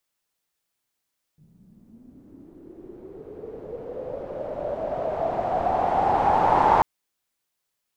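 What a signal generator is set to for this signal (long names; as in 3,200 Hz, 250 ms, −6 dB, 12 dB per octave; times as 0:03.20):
filter sweep on noise white, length 5.44 s lowpass, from 160 Hz, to 890 Hz, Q 7.1, linear, gain ramp +31 dB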